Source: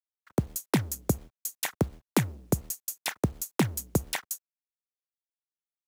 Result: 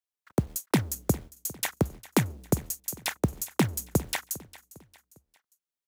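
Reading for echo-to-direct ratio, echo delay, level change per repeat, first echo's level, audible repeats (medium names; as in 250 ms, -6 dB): -18.0 dB, 403 ms, -7.5 dB, -19.0 dB, 3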